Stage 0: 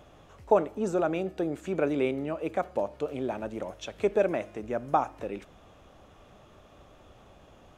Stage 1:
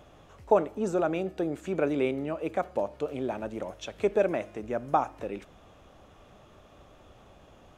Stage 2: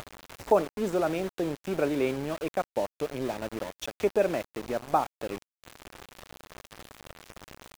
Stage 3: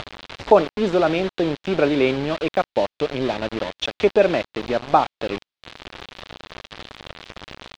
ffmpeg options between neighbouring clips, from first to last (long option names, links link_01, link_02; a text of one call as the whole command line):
ffmpeg -i in.wav -af anull out.wav
ffmpeg -i in.wav -af "acompressor=mode=upward:threshold=-29dB:ratio=2.5,aeval=exprs='val(0)*gte(abs(val(0)),0.0178)':channel_layout=same" out.wav
ffmpeg -i in.wav -af "lowpass=frequency=3800:width_type=q:width=1.9,volume=8.5dB" out.wav